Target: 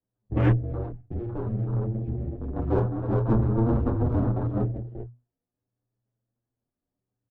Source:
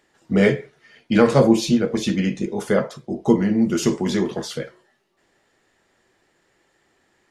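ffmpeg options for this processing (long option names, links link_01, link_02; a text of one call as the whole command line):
ffmpeg -i in.wav -filter_complex "[0:a]lowpass=3400,equalizer=frequency=110:width=0.56:gain=-3.5,aecho=1:1:47|272|277|332|376|398:0.112|0.2|0.158|0.119|0.398|0.501,asoftclip=type=tanh:threshold=-13.5dB,highpass=52,highshelf=frequency=2500:gain=-12,asplit=3[link_01][link_02][link_03];[link_01]afade=type=out:start_time=0.51:duration=0.02[link_04];[link_02]acompressor=threshold=-27dB:ratio=6,afade=type=in:start_time=0.51:duration=0.02,afade=type=out:start_time=2.55:duration=0.02[link_05];[link_03]afade=type=in:start_time=2.55:duration=0.02[link_06];[link_04][link_05][link_06]amix=inputs=3:normalize=0,aeval=exprs='max(val(0),0)':channel_layout=same,adynamicsmooth=sensitivity=2:basefreq=670,afwtdn=0.0158,afreqshift=-120,asplit=2[link_07][link_08];[link_08]adelay=7.7,afreqshift=0.7[link_09];[link_07][link_09]amix=inputs=2:normalize=1,volume=6dB" out.wav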